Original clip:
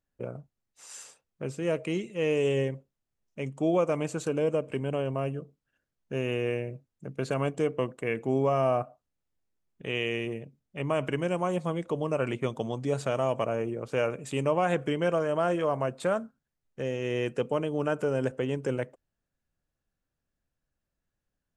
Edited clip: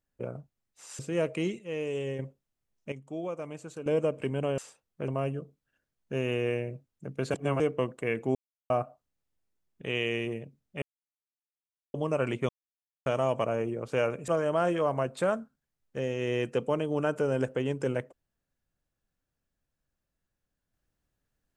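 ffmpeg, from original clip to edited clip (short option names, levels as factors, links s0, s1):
-filter_complex "[0:a]asplit=17[s0][s1][s2][s3][s4][s5][s6][s7][s8][s9][s10][s11][s12][s13][s14][s15][s16];[s0]atrim=end=0.992[s17];[s1]atrim=start=1.488:end=2.092[s18];[s2]atrim=start=2.088:end=2.692,asetpts=PTS-STARTPTS,volume=0.447[s19];[s3]atrim=start=2.688:end=3.422[s20];[s4]atrim=start=3.418:end=4.362,asetpts=PTS-STARTPTS,volume=0.299[s21];[s5]atrim=start=4.358:end=5.082[s22];[s6]atrim=start=0.988:end=1.492[s23];[s7]atrim=start=5.078:end=7.342[s24];[s8]atrim=start=7.338:end=7.602,asetpts=PTS-STARTPTS,areverse[s25];[s9]atrim=start=7.598:end=8.35,asetpts=PTS-STARTPTS,afade=t=out:st=0.748:d=0.004:c=hsin[s26];[s10]atrim=start=8.35:end=8.7,asetpts=PTS-STARTPTS,volume=0[s27];[s11]atrim=start=8.7:end=10.82,asetpts=PTS-STARTPTS,afade=t=in:d=0.004:c=hsin,afade=t=out:st=2.116:d=0.004:c=hsin[s28];[s12]atrim=start=10.82:end=11.94,asetpts=PTS-STARTPTS,volume=0[s29];[s13]atrim=start=11.94:end=12.49,asetpts=PTS-STARTPTS,afade=t=in:d=0.004:c=hsin,afade=t=out:st=0.546:d=0.004:c=hsin[s30];[s14]atrim=start=12.49:end=13.06,asetpts=PTS-STARTPTS,volume=0[s31];[s15]atrim=start=13.06:end=14.282,asetpts=PTS-STARTPTS,afade=t=in:d=0.004:c=hsin[s32];[s16]atrim=start=15.108[s33];[s17][s18]acrossfade=d=0.004:c1=hsin:c2=hsin[s34];[s34][s19]acrossfade=d=0.004:c1=hsin:c2=hsin[s35];[s35][s20]acrossfade=d=0.004:c1=hsin:c2=hsin[s36];[s36][s21]acrossfade=d=0.004:c1=hsin:c2=hsin[s37];[s37][s22]acrossfade=d=0.004:c1=hsin:c2=hsin[s38];[s38][s23]acrossfade=d=0.004:c1=hsin:c2=hsin[s39];[s39][s24]acrossfade=d=0.004:c1=hsin:c2=hsin[s40];[s40][s25]acrossfade=d=0.004:c1=hsin:c2=hsin[s41];[s26][s27][s28][s29][s30][s31][s32]concat=n=7:v=0:a=1[s42];[s41][s42]acrossfade=d=0.004:c1=hsin:c2=hsin[s43];[s43][s33]acrossfade=d=0.004:c1=hsin:c2=hsin"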